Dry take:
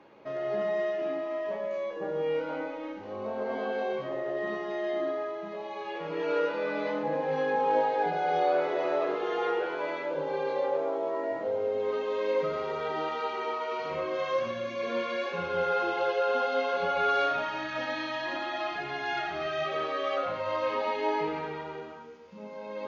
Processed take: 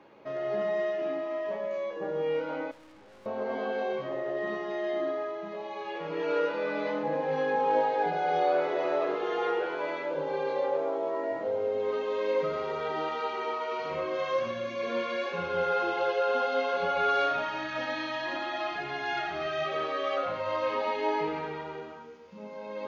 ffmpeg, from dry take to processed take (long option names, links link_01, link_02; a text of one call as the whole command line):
ffmpeg -i in.wav -filter_complex "[0:a]asettb=1/sr,asplit=3[link_01][link_02][link_03];[link_01]atrim=end=2.714[link_04];[link_02]atrim=start=2.71:end=3.26,asetpts=PTS-STARTPTS,afade=type=in:duration=0.004:curve=qsin,afade=type=out:start_time=0.546:duration=0.004:curve=qsin,aeval=exprs='(tanh(447*val(0)+0.4)-tanh(0.4))/447':channel_layout=same[link_05];[link_03]atrim=start=3.256[link_06];[link_04][link_05]acrossfade=duration=0.004:curve1=hsin:curve2=qsin[link_07];[link_07][link_06]acrossfade=duration=0.004:curve1=qsin:curve2=hsin" out.wav